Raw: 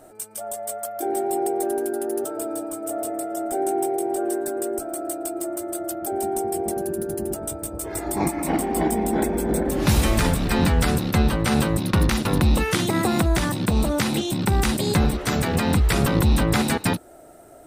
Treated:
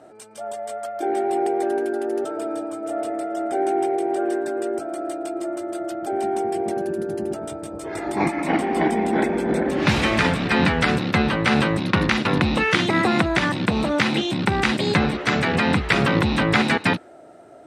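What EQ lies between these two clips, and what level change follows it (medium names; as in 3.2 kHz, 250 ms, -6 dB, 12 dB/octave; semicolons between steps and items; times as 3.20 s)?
dynamic bell 2.1 kHz, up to +7 dB, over -41 dBFS, Q 0.93; band-pass 130–4500 Hz; +1.5 dB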